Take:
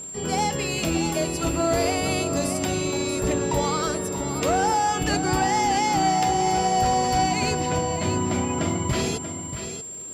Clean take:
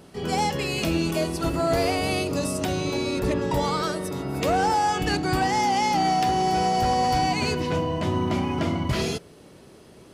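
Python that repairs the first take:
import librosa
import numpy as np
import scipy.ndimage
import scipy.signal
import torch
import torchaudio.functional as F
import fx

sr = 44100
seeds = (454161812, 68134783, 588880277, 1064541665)

y = fx.fix_declick_ar(x, sr, threshold=6.5)
y = fx.notch(y, sr, hz=7400.0, q=30.0)
y = fx.fix_echo_inverse(y, sr, delay_ms=634, level_db=-9.5)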